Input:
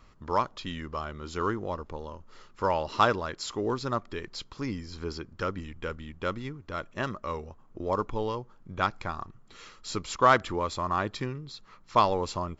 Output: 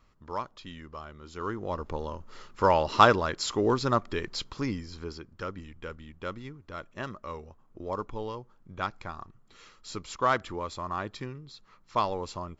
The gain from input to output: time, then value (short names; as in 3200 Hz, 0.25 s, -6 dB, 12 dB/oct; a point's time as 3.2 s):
1.35 s -7.5 dB
1.89 s +4.5 dB
4.49 s +4.5 dB
5.19 s -5 dB